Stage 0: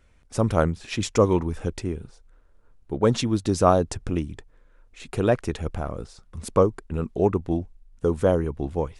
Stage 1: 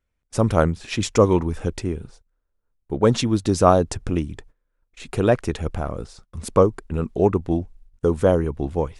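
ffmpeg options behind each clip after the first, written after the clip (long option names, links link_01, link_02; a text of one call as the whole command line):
ffmpeg -i in.wav -af "agate=range=-21dB:threshold=-48dB:ratio=16:detection=peak,volume=3dB" out.wav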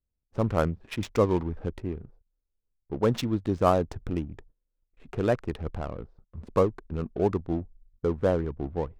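ffmpeg -i in.wav -af "adynamicsmooth=sensitivity=3.5:basefreq=580,volume=-7dB" out.wav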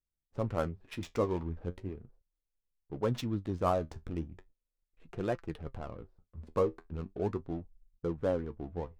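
ffmpeg -i in.wav -af "flanger=delay=5.7:depth=7.1:regen=57:speed=0.38:shape=sinusoidal,volume=-3.5dB" out.wav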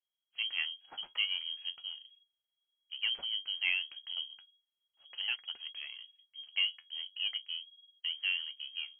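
ffmpeg -i in.wav -af "lowpass=frequency=2800:width_type=q:width=0.5098,lowpass=frequency=2800:width_type=q:width=0.6013,lowpass=frequency=2800:width_type=q:width=0.9,lowpass=frequency=2800:width_type=q:width=2.563,afreqshift=-3300,volume=-3dB" out.wav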